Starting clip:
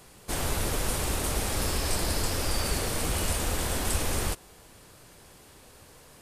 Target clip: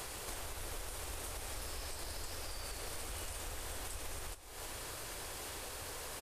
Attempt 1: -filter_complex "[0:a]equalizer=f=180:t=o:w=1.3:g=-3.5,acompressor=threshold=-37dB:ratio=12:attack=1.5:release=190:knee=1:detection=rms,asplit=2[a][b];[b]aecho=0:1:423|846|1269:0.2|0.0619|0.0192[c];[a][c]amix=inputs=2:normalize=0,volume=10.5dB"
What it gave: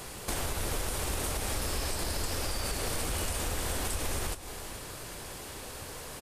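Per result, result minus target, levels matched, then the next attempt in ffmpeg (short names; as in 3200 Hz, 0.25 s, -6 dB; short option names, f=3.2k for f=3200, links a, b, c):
compressor: peak gain reduction -10 dB; 250 Hz band +4.5 dB
-filter_complex "[0:a]equalizer=f=180:t=o:w=1.3:g=-3.5,acompressor=threshold=-48.5dB:ratio=12:attack=1.5:release=190:knee=1:detection=rms,asplit=2[a][b];[b]aecho=0:1:423|846|1269:0.2|0.0619|0.0192[c];[a][c]amix=inputs=2:normalize=0,volume=10.5dB"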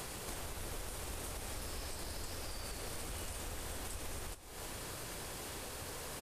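250 Hz band +5.0 dB
-filter_complex "[0:a]equalizer=f=180:t=o:w=1.3:g=-13.5,acompressor=threshold=-48.5dB:ratio=12:attack=1.5:release=190:knee=1:detection=rms,asplit=2[a][b];[b]aecho=0:1:423|846|1269:0.2|0.0619|0.0192[c];[a][c]amix=inputs=2:normalize=0,volume=10.5dB"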